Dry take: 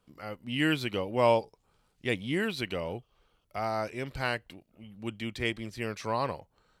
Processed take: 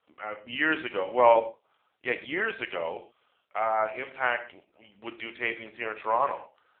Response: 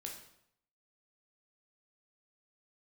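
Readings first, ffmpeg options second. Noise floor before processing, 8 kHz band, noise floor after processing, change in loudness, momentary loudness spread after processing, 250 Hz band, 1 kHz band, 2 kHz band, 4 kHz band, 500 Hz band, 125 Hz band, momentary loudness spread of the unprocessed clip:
-73 dBFS, under -30 dB, -73 dBFS, +3.5 dB, 17 LU, -5.5 dB, +6.5 dB, +5.0 dB, -3.5 dB, +3.5 dB, -16.0 dB, 15 LU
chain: -filter_complex "[0:a]acrossover=split=2500[a][b];[b]acompressor=threshold=-53dB:ratio=4:attack=1:release=60[c];[a][c]amix=inputs=2:normalize=0,highpass=590,acontrast=24,asplit=2[d][e];[1:a]atrim=start_sample=2205,atrim=end_sample=6174[f];[e][f]afir=irnorm=-1:irlink=0,volume=3dB[g];[d][g]amix=inputs=2:normalize=0,volume=-2dB" -ar 8000 -c:a libopencore_amrnb -b:a 5900

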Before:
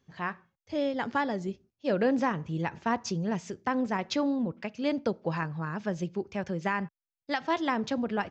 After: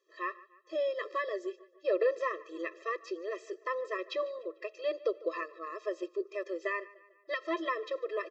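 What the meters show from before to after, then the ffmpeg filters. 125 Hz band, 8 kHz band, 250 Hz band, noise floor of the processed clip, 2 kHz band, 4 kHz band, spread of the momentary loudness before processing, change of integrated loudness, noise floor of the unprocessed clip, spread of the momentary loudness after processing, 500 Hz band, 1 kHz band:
under -40 dB, n/a, -14.5 dB, -65 dBFS, -3.5 dB, -7.0 dB, 7 LU, -4.5 dB, under -85 dBFS, 7 LU, -0.5 dB, -6.5 dB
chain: -filter_complex "[0:a]acrossover=split=3700[a][b];[b]acompressor=threshold=-55dB:ratio=4:attack=1:release=60[c];[a][c]amix=inputs=2:normalize=0,asplit=2[d][e];[e]adelay=148,lowpass=f=4.9k:p=1,volume=-20.5dB,asplit=2[f][g];[g]adelay=148,lowpass=f=4.9k:p=1,volume=0.53,asplit=2[h][i];[i]adelay=148,lowpass=f=4.9k:p=1,volume=0.53,asplit=2[j][k];[k]adelay=148,lowpass=f=4.9k:p=1,volume=0.53[l];[d][f][h][j][l]amix=inputs=5:normalize=0,afftfilt=real='re*eq(mod(floor(b*sr/1024/340),2),1)':imag='im*eq(mod(floor(b*sr/1024/340),2),1)':win_size=1024:overlap=0.75"

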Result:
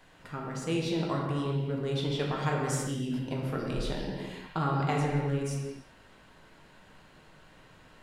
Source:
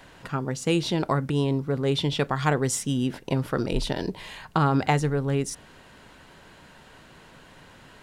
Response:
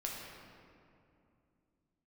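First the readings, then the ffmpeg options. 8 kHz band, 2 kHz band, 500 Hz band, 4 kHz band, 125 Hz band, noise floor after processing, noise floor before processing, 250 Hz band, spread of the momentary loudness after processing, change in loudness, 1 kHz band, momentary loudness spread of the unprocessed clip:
-8.0 dB, -6.5 dB, -6.0 dB, -7.5 dB, -4.5 dB, -57 dBFS, -51 dBFS, -6.0 dB, 9 LU, -6.0 dB, -6.0 dB, 8 LU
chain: -filter_complex "[1:a]atrim=start_sample=2205,afade=t=out:st=0.43:d=0.01,atrim=end_sample=19404[a];[0:a][a]afir=irnorm=-1:irlink=0,volume=-7dB"

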